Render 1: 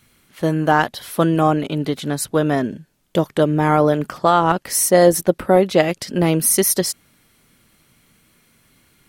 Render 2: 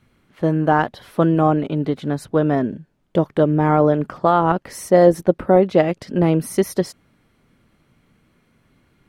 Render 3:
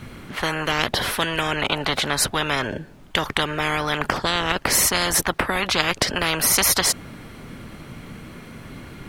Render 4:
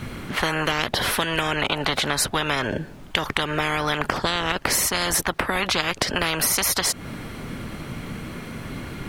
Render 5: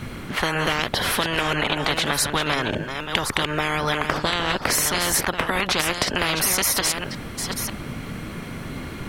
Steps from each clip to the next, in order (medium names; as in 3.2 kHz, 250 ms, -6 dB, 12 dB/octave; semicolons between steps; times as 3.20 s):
low-pass 1.1 kHz 6 dB/octave; trim +1 dB
spectrum-flattening compressor 10:1
compression, threshold -24 dBFS, peak gain reduction 10 dB; trim +5 dB
chunks repeated in reverse 550 ms, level -6.5 dB